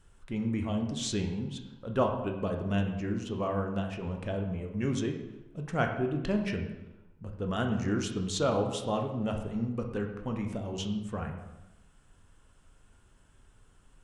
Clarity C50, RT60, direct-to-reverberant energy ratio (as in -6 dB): 6.0 dB, 1.0 s, 3.0 dB